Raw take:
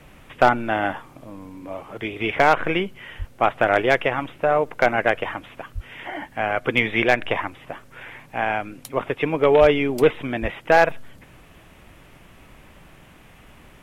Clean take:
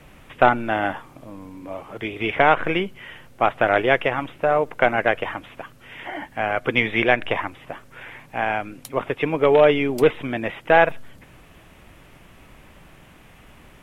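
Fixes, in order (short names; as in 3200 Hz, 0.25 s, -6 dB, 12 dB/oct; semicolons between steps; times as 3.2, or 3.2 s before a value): clip repair -5 dBFS; de-plosive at 3.18/5.74/9.6/10.41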